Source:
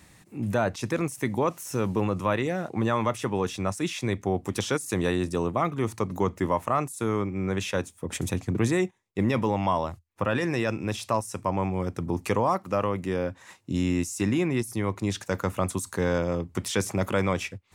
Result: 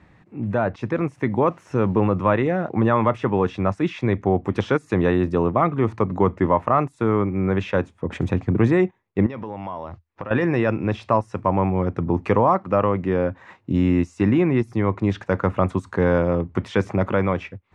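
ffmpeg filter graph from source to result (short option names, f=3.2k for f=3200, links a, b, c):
-filter_complex "[0:a]asettb=1/sr,asplit=3[a][b][c];[a]atrim=end=9.264[d];[b]atrim=start=9.26:end=10.31,asetpts=PTS-STARTPTS,afade=t=in:d=0.004:c=qsin,afade=t=out:st=1.046:d=0.004:c=qsin,acompressor=threshold=-33dB:ratio=10:attack=3.2:release=140:knee=1:detection=peak,lowpass=f=5.9k:w=0.5412,lowpass=f=5.9k:w=1.3066,bass=f=250:g=-3,treble=f=4k:g=8[e];[c]atrim=start=10.306[f];[d][e]acrossfade=d=0.004:c1=hsin:c2=qsin[g];[g][f]acrossfade=d=0.004:c1=qsin:c2=hsin,lowpass=1.9k,dynaudnorm=f=470:g=5:m=4dB,volume=3dB"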